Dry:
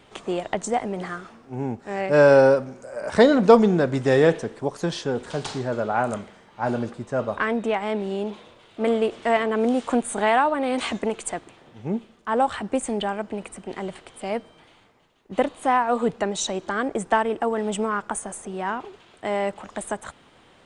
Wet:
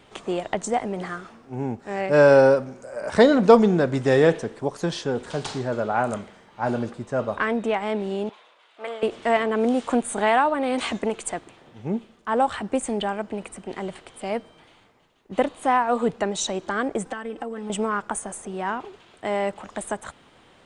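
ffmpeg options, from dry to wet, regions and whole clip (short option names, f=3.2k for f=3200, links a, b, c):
-filter_complex "[0:a]asettb=1/sr,asplit=3[a][b][c];[a]atrim=end=8.294[d];[b]atrim=start=8.29:end=9.03,asetpts=PTS-STARTPTS,afade=t=in:d=0.004:c=qsin,afade=t=out:st=0.736:d=0.004:c=qsin,highpass=900,highshelf=f=3.7k:g=-9.5[e];[c]atrim=start=9.026[f];[d][e]acrossfade=d=0.004:c1=hsin:c2=qsin[g];[g][f]acrossfade=d=0.004:c1=qsin:c2=hsin,asettb=1/sr,asplit=3[h][i][j];[h]atrim=end=17.054[k];[i]atrim=start=17.05:end=17.7,asetpts=PTS-STARTPTS,afade=t=in:d=0.004:c=qsin,afade=t=out:st=0.646:d=0.004:c=qsin,acompressor=threshold=-33dB:ratio=3:attack=3.2:release=140:knee=1:detection=peak,aecho=1:1:3.9:0.79,atrim=end_sample=28665[l];[j]atrim=start=17.696[m];[k][l]acrossfade=d=0.004:c1=hsin:c2=qsin[n];[n][m]acrossfade=d=0.004:c1=qsin:c2=hsin"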